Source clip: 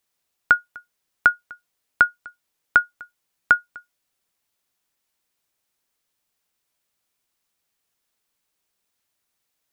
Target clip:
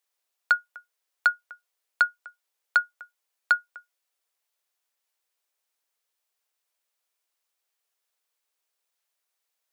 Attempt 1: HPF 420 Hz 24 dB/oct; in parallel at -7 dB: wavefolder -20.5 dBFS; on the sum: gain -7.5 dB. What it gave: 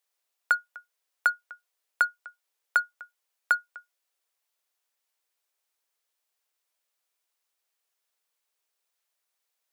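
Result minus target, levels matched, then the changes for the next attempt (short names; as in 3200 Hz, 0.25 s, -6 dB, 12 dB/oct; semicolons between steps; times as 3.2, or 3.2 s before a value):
wavefolder: distortion +21 dB
change: wavefolder -9.5 dBFS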